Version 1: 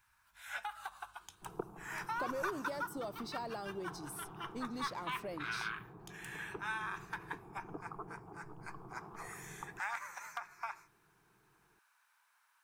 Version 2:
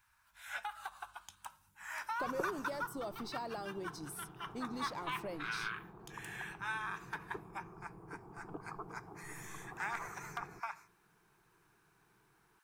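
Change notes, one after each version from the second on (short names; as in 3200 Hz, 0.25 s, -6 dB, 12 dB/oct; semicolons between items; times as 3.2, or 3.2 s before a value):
second sound: entry +0.80 s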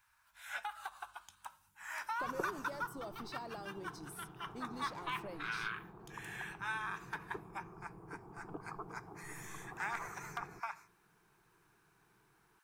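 speech -4.5 dB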